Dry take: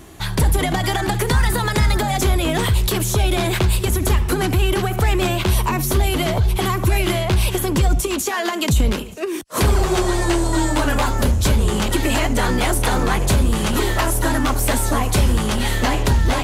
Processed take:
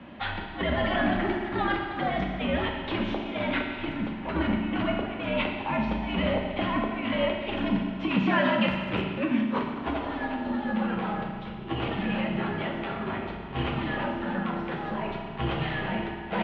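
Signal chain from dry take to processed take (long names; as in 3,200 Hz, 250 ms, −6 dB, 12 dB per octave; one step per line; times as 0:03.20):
healed spectral selection 0:04.28–0:04.50, 550–1,200 Hz after
compressor whose output falls as the input rises −21 dBFS, ratio −0.5
feedback delay network reverb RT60 1.7 s, low-frequency decay 1.05×, high-frequency decay 0.9×, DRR 0 dB
single-sideband voice off tune −86 Hz 180–3,200 Hz
far-end echo of a speakerphone 350 ms, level −18 dB
level −7 dB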